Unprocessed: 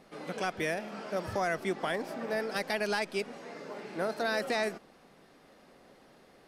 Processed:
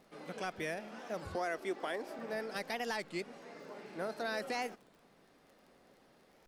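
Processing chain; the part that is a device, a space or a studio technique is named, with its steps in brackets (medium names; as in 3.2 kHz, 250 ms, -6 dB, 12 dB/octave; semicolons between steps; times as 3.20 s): 1.36–2.19 s: resonant low shelf 230 Hz -9 dB, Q 1.5; warped LP (warped record 33 1/3 rpm, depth 250 cents; crackle 23 per s -45 dBFS; pink noise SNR 42 dB); trim -6.5 dB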